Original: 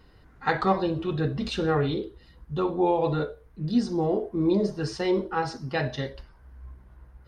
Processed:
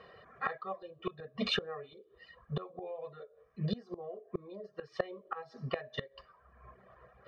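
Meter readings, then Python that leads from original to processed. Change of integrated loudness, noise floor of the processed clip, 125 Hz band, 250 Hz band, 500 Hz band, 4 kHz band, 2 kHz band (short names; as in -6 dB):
-13.0 dB, -66 dBFS, -13.0 dB, -17.0 dB, -14.0 dB, -3.0 dB, -8.5 dB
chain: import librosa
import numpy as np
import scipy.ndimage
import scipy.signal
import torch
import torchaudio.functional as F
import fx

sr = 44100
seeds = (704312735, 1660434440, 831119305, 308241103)

y = fx.bandpass_edges(x, sr, low_hz=300.0, high_hz=2400.0)
y = fx.dereverb_blind(y, sr, rt60_s=0.85)
y = fx.gate_flip(y, sr, shuts_db=-27.0, range_db=-25)
y = y + 0.96 * np.pad(y, (int(1.7 * sr / 1000.0), 0))[:len(y)]
y = y * 10.0 ** (6.0 / 20.0)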